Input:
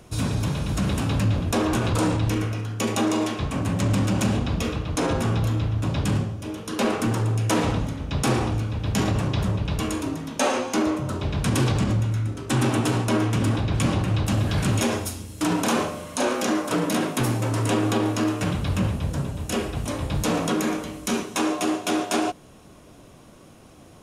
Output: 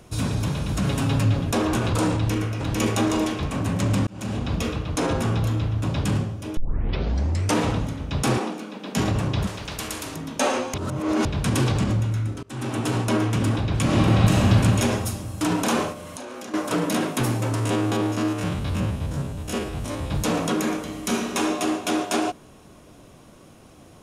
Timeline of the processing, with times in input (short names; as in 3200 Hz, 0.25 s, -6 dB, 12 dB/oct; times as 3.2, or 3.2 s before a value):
0.84–1.52 comb 7.3 ms, depth 57%
2.15–2.79 echo throw 0.45 s, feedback 45%, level -0.5 dB
4.07–4.53 fade in
6.57 tape start 1.01 s
8.38–8.97 elliptic high-pass 190 Hz
9.47–10.16 spectral compressor 2:1
10.74–11.25 reverse
12.43–13 fade in, from -23 dB
13.84–14.38 reverb throw, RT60 2.8 s, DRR -5.5 dB
15.92–16.54 compressor 16:1, threshold -32 dBFS
17.55–20.11 stepped spectrum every 50 ms
20.8–21.38 reverb throw, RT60 2.5 s, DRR 2.5 dB